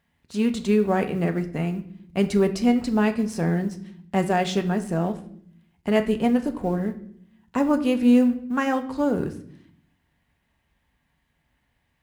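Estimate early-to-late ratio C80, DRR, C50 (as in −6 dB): 17.0 dB, 6.0 dB, 14.0 dB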